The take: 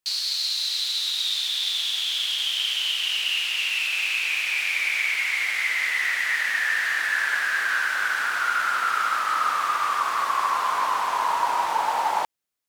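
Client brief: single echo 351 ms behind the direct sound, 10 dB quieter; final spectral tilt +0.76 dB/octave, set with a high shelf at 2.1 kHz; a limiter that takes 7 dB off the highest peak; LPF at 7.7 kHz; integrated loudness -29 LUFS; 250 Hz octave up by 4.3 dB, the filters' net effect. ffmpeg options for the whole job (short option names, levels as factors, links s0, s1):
-af "lowpass=7700,equalizer=f=250:t=o:g=6,highshelf=f=2100:g=-7,alimiter=limit=0.112:level=0:latency=1,aecho=1:1:351:0.316,volume=0.75"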